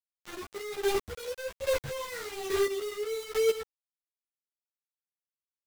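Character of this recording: phasing stages 8, 2.6 Hz, lowest notch 800–1700 Hz; a quantiser's noise floor 6-bit, dither none; chopped level 1.2 Hz, depth 65%, duty 20%; a shimmering, thickened sound

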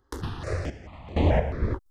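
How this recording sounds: random-step tremolo 4.3 Hz, depth 95%; notches that jump at a steady rate 4.6 Hz 650–5300 Hz

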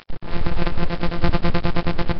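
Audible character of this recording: a buzz of ramps at a fixed pitch in blocks of 256 samples; chopped level 9.7 Hz, depth 60%, duty 55%; a quantiser's noise floor 6-bit, dither none; Nellymoser

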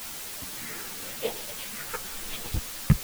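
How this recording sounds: phasing stages 4, 0.9 Hz, lowest notch 640–1600 Hz; a quantiser's noise floor 6-bit, dither triangular; a shimmering, thickened sound

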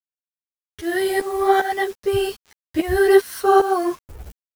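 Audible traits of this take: tremolo saw up 2.5 Hz, depth 85%; a quantiser's noise floor 8-bit, dither none; a shimmering, thickened sound

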